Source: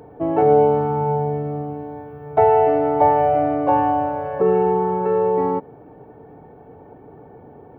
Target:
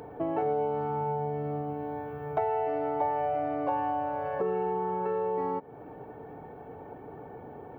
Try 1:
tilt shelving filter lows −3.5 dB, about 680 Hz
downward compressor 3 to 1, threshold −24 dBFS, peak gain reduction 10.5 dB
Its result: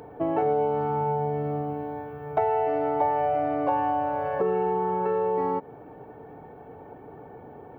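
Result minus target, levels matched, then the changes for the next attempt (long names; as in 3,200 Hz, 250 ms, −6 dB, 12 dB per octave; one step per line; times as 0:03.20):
downward compressor: peak gain reduction −4.5 dB
change: downward compressor 3 to 1, threshold −31 dBFS, peak gain reduction 15.5 dB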